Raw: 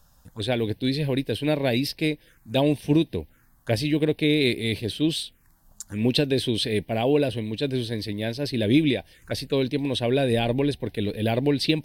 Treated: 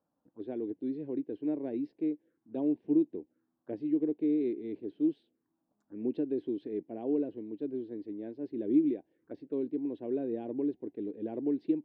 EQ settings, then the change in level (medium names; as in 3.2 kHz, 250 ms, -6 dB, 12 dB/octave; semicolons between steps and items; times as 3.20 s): ladder band-pass 360 Hz, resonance 55%; dynamic bell 570 Hz, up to -5 dB, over -48 dBFS, Q 2.2; 0.0 dB